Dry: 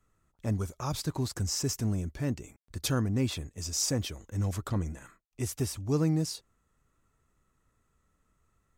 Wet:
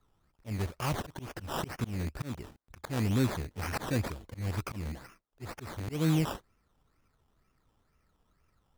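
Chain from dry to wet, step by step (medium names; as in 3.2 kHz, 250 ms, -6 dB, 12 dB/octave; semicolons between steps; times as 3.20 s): rattle on loud lows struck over -36 dBFS, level -30 dBFS; decimation with a swept rate 16×, swing 60% 2.1 Hz; slow attack 198 ms; trim +1 dB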